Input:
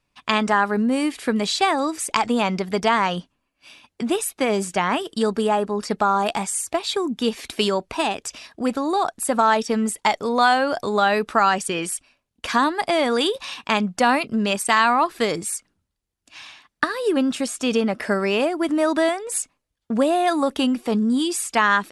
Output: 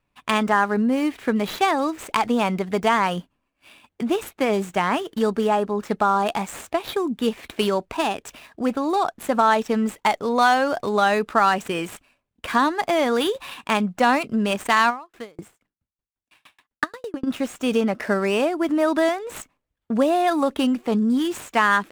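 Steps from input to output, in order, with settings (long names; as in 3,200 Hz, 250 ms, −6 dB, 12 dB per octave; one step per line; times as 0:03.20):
running median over 9 samples
0:14.89–0:17.26: tremolo with a ramp in dB decaying 3.3 Hz → 11 Hz, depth 39 dB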